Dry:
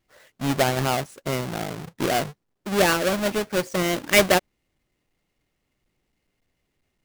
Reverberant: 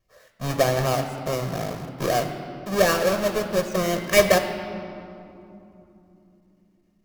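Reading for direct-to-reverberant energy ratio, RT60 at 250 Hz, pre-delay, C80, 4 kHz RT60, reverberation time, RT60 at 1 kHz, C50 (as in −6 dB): 7.0 dB, 4.9 s, 3 ms, 9.0 dB, 1.6 s, 3.0 s, 2.8 s, 8.0 dB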